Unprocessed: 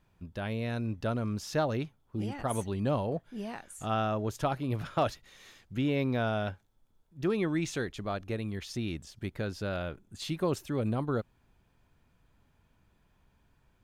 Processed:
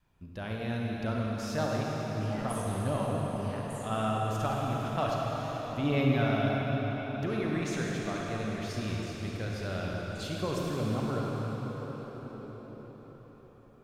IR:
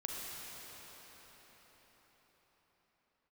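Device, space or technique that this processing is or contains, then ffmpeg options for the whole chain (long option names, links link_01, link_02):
cathedral: -filter_complex "[0:a]asettb=1/sr,asplit=3[link_01][link_02][link_03];[link_01]atrim=end=5.834[link_04];[link_02]atrim=start=5.83:end=6.24,asetpts=PTS-STARTPTS,afade=type=in:duration=0.004:curve=qsin,afade=type=out:start_time=0.406:duration=0.004:curve=qsin,aecho=1:1:7.2:0.86,atrim=end_sample=18081[link_05];[link_03]atrim=start=6.236[link_06];[link_04][link_05]acrossfade=duration=0.004:curve1=hsin:curve2=qsin[link_07];[link_07][link_06]acrossfade=duration=0.004:curve1=qsin:curve2=hsin[link_08];[1:a]atrim=start_sample=2205[link_09];[link_08][link_09]afir=irnorm=-1:irlink=0,adynamicequalizer=threshold=0.00708:dfrequency=370:dqfactor=1.7:tfrequency=370:tqfactor=1.7:attack=5:release=100:ratio=0.375:range=2.5:mode=cutabove:tftype=bell"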